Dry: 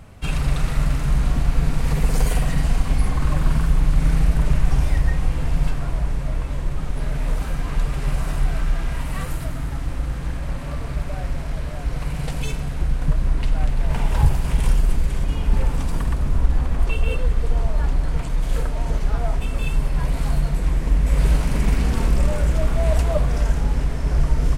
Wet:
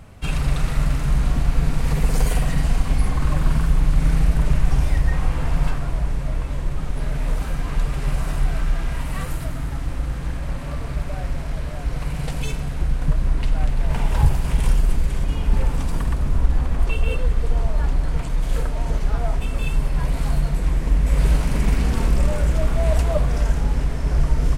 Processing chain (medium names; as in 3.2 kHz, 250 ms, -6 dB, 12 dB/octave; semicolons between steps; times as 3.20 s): 5.12–5.78 s: peaking EQ 1.1 kHz +5 dB 1.7 oct